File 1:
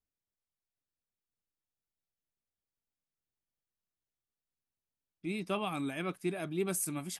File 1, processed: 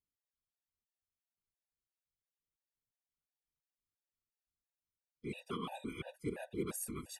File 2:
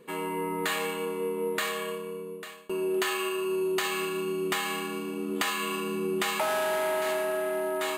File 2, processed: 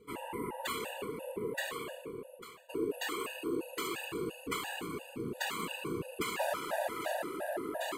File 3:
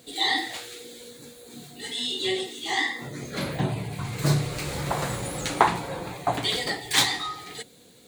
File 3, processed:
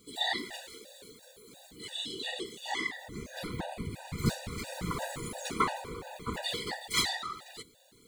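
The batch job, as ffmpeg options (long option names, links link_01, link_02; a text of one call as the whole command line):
ffmpeg -i in.wav -af "afftfilt=real='hypot(re,im)*cos(2*PI*random(0))':imag='hypot(re,im)*sin(2*PI*random(1))':win_size=512:overlap=0.75,afftfilt=real='re*gt(sin(2*PI*2.9*pts/sr)*(1-2*mod(floor(b*sr/1024/490),2)),0)':imag='im*gt(sin(2*PI*2.9*pts/sr)*(1-2*mod(floor(b*sr/1024/490),2)),0)':win_size=1024:overlap=0.75,volume=1.5dB" out.wav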